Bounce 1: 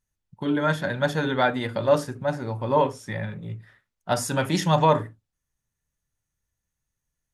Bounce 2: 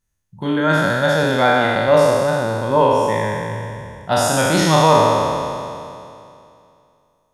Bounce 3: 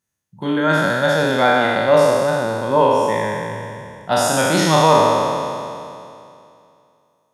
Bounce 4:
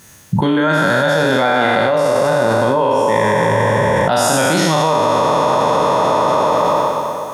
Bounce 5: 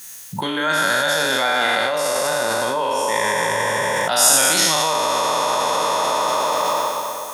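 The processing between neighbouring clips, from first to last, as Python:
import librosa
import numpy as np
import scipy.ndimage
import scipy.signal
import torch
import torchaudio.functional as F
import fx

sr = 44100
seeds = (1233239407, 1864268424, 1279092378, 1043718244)

y1 = fx.spec_trails(x, sr, decay_s=2.55)
y1 = y1 * librosa.db_to_amplitude(3.0)
y2 = scipy.signal.sosfilt(scipy.signal.butter(2, 140.0, 'highpass', fs=sr, output='sos'), y1)
y3 = fx.echo_wet_bandpass(y2, sr, ms=121, feedback_pct=73, hz=870.0, wet_db=-12.5)
y3 = fx.env_flatten(y3, sr, amount_pct=100)
y3 = y3 * librosa.db_to_amplitude(-4.0)
y4 = fx.tilt_eq(y3, sr, slope=4.0)
y4 = y4 * librosa.db_to_amplitude(-4.5)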